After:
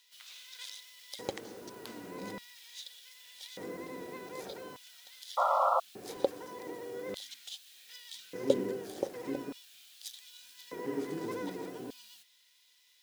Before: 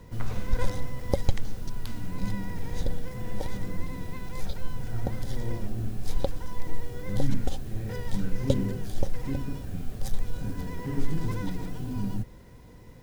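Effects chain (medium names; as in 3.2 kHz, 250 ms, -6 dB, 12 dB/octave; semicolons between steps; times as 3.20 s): LFO high-pass square 0.42 Hz 380–3400 Hz; painted sound noise, 5.37–5.80 s, 510–1400 Hz -24 dBFS; trim -3 dB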